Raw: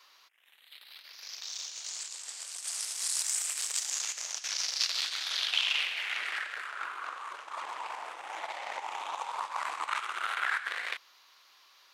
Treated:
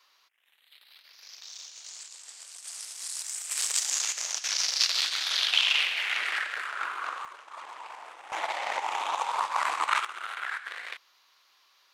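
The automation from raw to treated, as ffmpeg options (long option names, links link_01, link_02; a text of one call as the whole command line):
ffmpeg -i in.wav -af "asetnsamples=nb_out_samples=441:pad=0,asendcmd='3.51 volume volume 5dB;7.25 volume volume -4dB;8.32 volume volume 7dB;10.05 volume volume -3.5dB',volume=-4.5dB" out.wav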